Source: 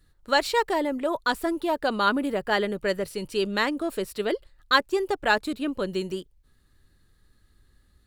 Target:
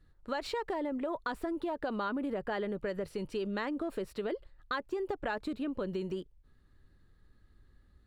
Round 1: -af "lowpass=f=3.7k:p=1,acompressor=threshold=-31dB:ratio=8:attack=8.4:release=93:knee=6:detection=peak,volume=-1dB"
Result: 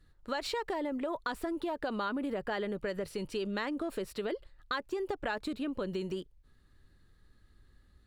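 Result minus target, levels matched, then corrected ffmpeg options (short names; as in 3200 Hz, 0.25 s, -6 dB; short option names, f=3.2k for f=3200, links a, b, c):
4000 Hz band +3.5 dB
-af "lowpass=f=1.6k:p=1,acompressor=threshold=-31dB:ratio=8:attack=8.4:release=93:knee=6:detection=peak,volume=-1dB"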